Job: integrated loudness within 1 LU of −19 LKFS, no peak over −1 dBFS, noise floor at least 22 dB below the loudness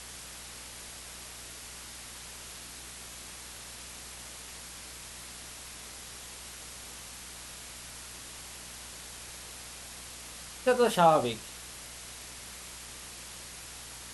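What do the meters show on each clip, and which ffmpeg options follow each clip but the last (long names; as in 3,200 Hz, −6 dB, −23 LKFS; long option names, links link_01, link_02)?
mains hum 60 Hz; hum harmonics up to 240 Hz; level of the hum −54 dBFS; background noise floor −46 dBFS; target noise floor −58 dBFS; integrated loudness −36.0 LKFS; sample peak −10.0 dBFS; target loudness −19.0 LKFS
→ -af "bandreject=frequency=60:width_type=h:width=4,bandreject=frequency=120:width_type=h:width=4,bandreject=frequency=180:width_type=h:width=4,bandreject=frequency=240:width_type=h:width=4"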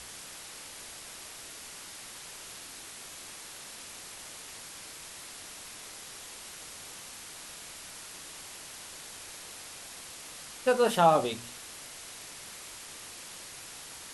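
mains hum none found; background noise floor −46 dBFS; target noise floor −58 dBFS
→ -af "afftdn=noise_reduction=12:noise_floor=-46"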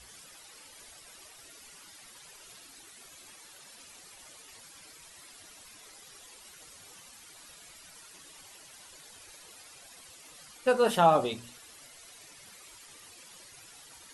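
background noise floor −53 dBFS; integrated loudness −26.0 LKFS; sample peak −10.0 dBFS; target loudness −19.0 LKFS
→ -af "volume=7dB"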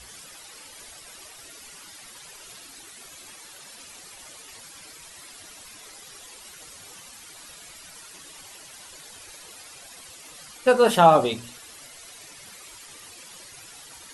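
integrated loudness −19.0 LKFS; sample peak −3.0 dBFS; background noise floor −46 dBFS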